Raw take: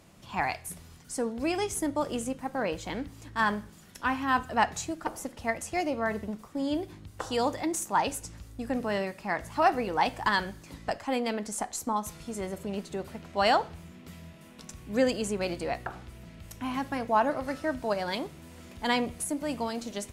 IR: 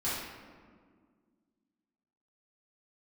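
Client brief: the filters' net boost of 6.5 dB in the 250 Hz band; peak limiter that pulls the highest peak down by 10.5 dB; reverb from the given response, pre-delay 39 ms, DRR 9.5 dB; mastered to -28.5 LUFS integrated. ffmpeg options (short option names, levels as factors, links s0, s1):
-filter_complex "[0:a]equalizer=f=250:t=o:g=7.5,alimiter=limit=0.0944:level=0:latency=1,asplit=2[s0][s1];[1:a]atrim=start_sample=2205,adelay=39[s2];[s1][s2]afir=irnorm=-1:irlink=0,volume=0.15[s3];[s0][s3]amix=inputs=2:normalize=0,volume=1.26"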